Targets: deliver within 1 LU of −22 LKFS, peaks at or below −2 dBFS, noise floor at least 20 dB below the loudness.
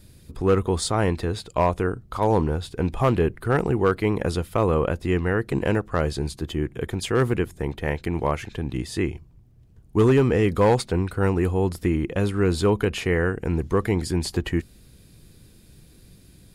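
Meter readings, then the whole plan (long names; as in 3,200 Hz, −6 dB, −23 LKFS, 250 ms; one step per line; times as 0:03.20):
share of clipped samples 0.4%; peaks flattened at −11.5 dBFS; integrated loudness −23.5 LKFS; sample peak −11.5 dBFS; target loudness −22.0 LKFS
→ clipped peaks rebuilt −11.5 dBFS
level +1.5 dB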